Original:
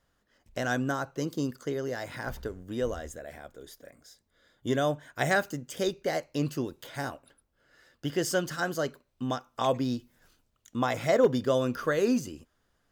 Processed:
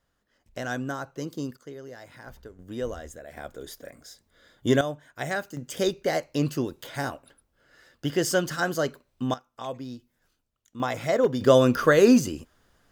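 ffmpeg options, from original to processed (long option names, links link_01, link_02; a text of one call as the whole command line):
ffmpeg -i in.wav -af "asetnsamples=nb_out_samples=441:pad=0,asendcmd='1.57 volume volume -9dB;2.59 volume volume -1dB;3.37 volume volume 7dB;4.81 volume volume -4dB;5.57 volume volume 4dB;9.34 volume volume -8dB;10.8 volume volume 0dB;11.41 volume volume 9dB',volume=-2dB" out.wav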